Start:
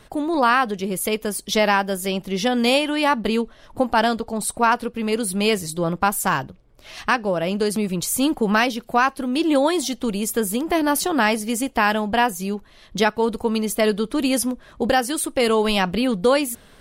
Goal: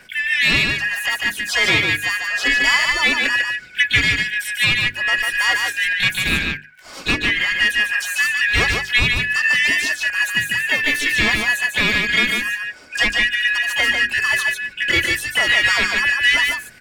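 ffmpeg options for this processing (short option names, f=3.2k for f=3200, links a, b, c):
-filter_complex "[0:a]afftfilt=real='real(if(lt(b,272),68*(eq(floor(b/68),0)*1+eq(floor(b/68),1)*0+eq(floor(b/68),2)*3+eq(floor(b/68),3)*2)+mod(b,68),b),0)':imag='imag(if(lt(b,272),68*(eq(floor(b/68),0)*1+eq(floor(b/68),1)*0+eq(floor(b/68),2)*3+eq(floor(b/68),3)*2)+mod(b,68),b),0)':win_size=2048:overlap=0.75,bandreject=f=50:t=h:w=6,bandreject=f=100:t=h:w=6,bandreject=f=150:t=h:w=6,bandreject=f=200:t=h:w=6,bandreject=f=250:t=h:w=6,bandreject=f=300:t=h:w=6,bandreject=f=350:t=h:w=6,bandreject=f=400:t=h:w=6,acrossover=split=7100[a][b];[b]acompressor=threshold=-39dB:ratio=4:attack=1:release=60[c];[a][c]amix=inputs=2:normalize=0,lowshelf=f=210:g=2,acontrast=77,aphaser=in_gain=1:out_gain=1:delay=3.7:decay=0.31:speed=0.78:type=sinusoidal,asplit=2[d][e];[e]asetrate=66075,aresample=44100,atempo=0.66742,volume=-6dB[f];[d][f]amix=inputs=2:normalize=0,asplit=2[g][h];[h]aecho=0:1:147:0.631[i];[g][i]amix=inputs=2:normalize=0,volume=-6.5dB"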